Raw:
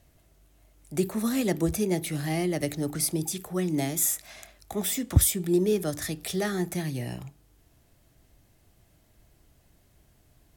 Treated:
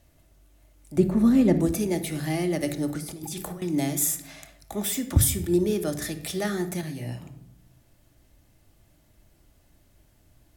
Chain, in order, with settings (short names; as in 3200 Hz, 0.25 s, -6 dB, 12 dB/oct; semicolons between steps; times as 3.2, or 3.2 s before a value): 0.97–1.61 tilt -3.5 dB/oct; 2.98–3.62 negative-ratio compressor -37 dBFS, ratio -1; on a send at -8 dB: reverb RT60 0.80 s, pre-delay 3 ms; 6.81–7.23 on the sum: detuned doubles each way 23 cents